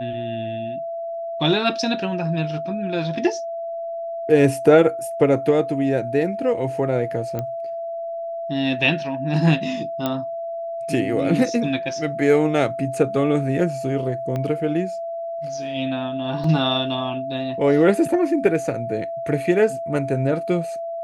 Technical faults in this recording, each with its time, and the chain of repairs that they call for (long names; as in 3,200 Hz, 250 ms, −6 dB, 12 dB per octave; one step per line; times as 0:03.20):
whistle 670 Hz −26 dBFS
0:07.39: click −14 dBFS
0:10.06: click −9 dBFS
0:14.36: click −15 dBFS
0:16.44: drop-out 2.9 ms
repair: click removal
notch filter 670 Hz, Q 30
repair the gap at 0:16.44, 2.9 ms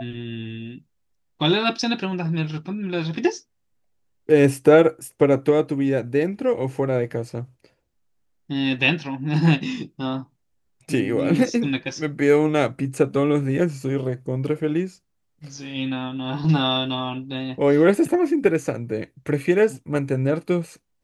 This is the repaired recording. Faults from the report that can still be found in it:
0:14.36: click